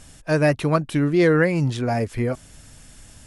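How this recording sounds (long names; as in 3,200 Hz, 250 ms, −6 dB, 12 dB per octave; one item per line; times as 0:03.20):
background noise floor −48 dBFS
spectral slope −5.0 dB per octave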